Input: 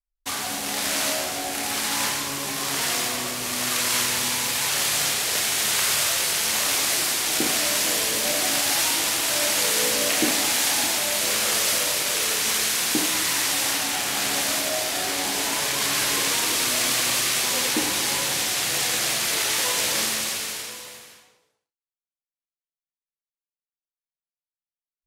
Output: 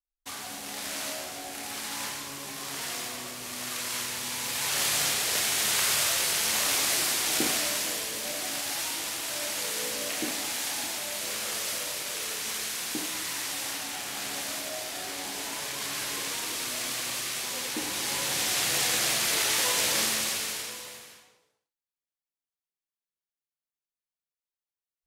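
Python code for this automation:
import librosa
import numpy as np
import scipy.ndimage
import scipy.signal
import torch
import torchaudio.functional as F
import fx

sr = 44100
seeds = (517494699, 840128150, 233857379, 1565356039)

y = fx.gain(x, sr, db=fx.line((4.22, -10.0), (4.83, -3.5), (7.43, -3.5), (8.08, -10.0), (17.69, -10.0), (18.55, -2.5)))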